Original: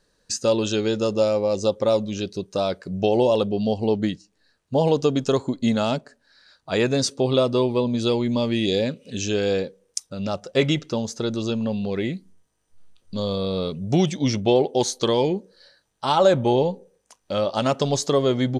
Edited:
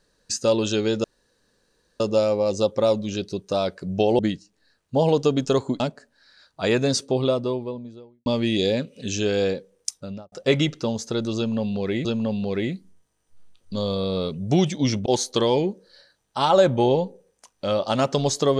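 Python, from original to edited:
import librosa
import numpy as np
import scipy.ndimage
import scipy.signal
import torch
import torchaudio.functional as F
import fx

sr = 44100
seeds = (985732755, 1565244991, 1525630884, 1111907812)

y = fx.studio_fade_out(x, sr, start_s=6.95, length_s=1.4)
y = fx.studio_fade_out(y, sr, start_s=10.05, length_s=0.36)
y = fx.edit(y, sr, fx.insert_room_tone(at_s=1.04, length_s=0.96),
    fx.cut(start_s=3.23, length_s=0.75),
    fx.cut(start_s=5.59, length_s=0.3),
    fx.repeat(start_s=11.46, length_s=0.68, count=2),
    fx.cut(start_s=14.47, length_s=0.26), tone=tone)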